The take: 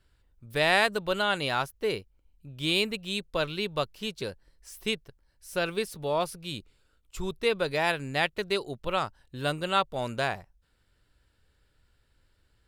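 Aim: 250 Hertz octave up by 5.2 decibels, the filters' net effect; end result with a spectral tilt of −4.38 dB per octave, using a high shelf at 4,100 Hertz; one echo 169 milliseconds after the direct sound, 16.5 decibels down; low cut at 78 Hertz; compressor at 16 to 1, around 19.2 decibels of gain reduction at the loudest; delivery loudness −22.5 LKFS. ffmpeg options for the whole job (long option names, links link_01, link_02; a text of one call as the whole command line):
ffmpeg -i in.wav -af "highpass=78,equalizer=frequency=250:width_type=o:gain=7.5,highshelf=frequency=4100:gain=-8.5,acompressor=threshold=-38dB:ratio=16,aecho=1:1:169:0.15,volume=21.5dB" out.wav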